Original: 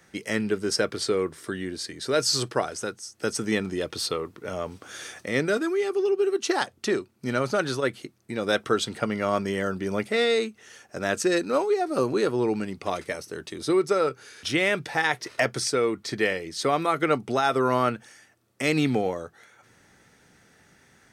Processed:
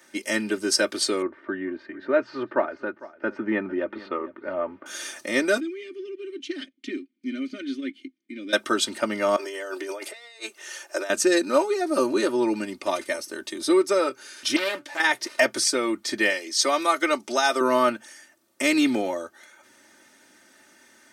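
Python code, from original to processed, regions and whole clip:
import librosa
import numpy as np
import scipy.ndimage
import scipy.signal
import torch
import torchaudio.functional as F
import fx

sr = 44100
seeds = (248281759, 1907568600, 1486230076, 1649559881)

y = fx.chain(x, sr, fx.lowpass(hz=2000.0, slope=24),
    fx.echo_single(ms=452, db=-18.5), at=(1.22, 4.86))
y = fx.chain(y, sr, fx.leveller(passes=1),
    fx.vowel_filter(vowel='i'), at=(5.6, 8.53))
y = fx.chain(y, sr, fx.over_compress(threshold_db=-31.0, ratio=-0.5),
    fx.steep_highpass(hz=330.0, slope=48), at=(9.36, 11.1))
y = fx.chain(y, sr, fx.comb_fb(f0_hz=290.0, decay_s=0.17, harmonics='all', damping=0.0, mix_pct=70),
    fx.doppler_dist(depth_ms=0.66), at=(14.56, 15.0))
y = fx.chain(y, sr, fx.highpass(hz=420.0, slope=6),
    fx.peak_eq(hz=5800.0, db=7.5, octaves=0.82), at=(16.3, 17.61))
y = scipy.signal.sosfilt(scipy.signal.butter(2, 230.0, 'highpass', fs=sr, output='sos'), y)
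y = fx.high_shelf(y, sr, hz=4900.0, db=5.0)
y = y + 0.91 * np.pad(y, (int(3.3 * sr / 1000.0), 0))[:len(y)]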